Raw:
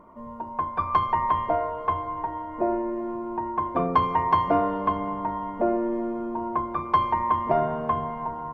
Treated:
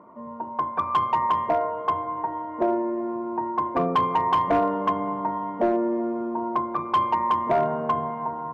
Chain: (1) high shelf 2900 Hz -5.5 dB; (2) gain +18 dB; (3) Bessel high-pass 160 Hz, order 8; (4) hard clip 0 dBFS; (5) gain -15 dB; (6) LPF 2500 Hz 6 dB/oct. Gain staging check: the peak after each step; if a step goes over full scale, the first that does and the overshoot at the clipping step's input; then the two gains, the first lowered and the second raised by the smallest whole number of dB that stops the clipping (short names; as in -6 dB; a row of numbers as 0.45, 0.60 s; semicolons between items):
-8.5, +9.5, +9.0, 0.0, -15.0, -15.0 dBFS; step 2, 9.0 dB; step 2 +9 dB, step 5 -6 dB